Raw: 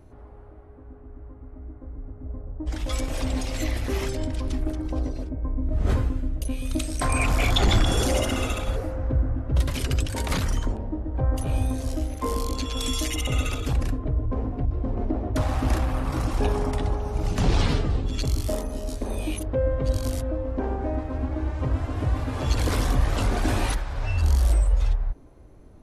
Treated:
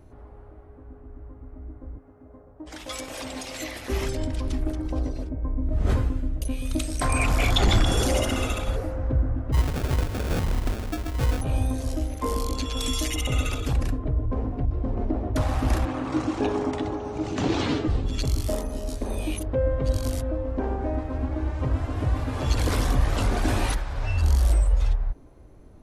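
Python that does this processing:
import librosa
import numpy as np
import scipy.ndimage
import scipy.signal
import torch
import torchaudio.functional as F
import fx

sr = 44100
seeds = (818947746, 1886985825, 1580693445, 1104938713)

y = fx.highpass(x, sr, hz=510.0, slope=6, at=(1.98, 3.9))
y = fx.sample_hold(y, sr, seeds[0], rate_hz=1000.0, jitter_pct=0, at=(9.52, 11.4), fade=0.02)
y = fx.cabinet(y, sr, low_hz=130.0, low_slope=12, high_hz=7500.0, hz=(170.0, 310.0, 5100.0), db=(-7, 10, -4), at=(15.85, 17.88))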